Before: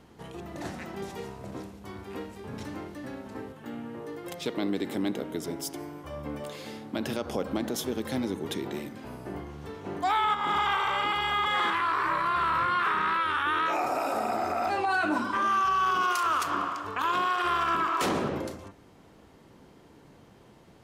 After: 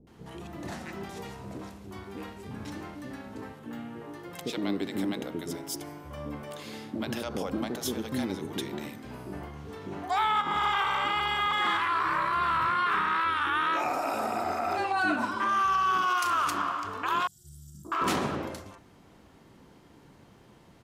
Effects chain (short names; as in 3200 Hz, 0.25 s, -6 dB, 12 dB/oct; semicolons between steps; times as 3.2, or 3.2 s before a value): 17.2–17.85 elliptic band-stop 160–7200 Hz, stop band 50 dB; bands offset in time lows, highs 70 ms, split 490 Hz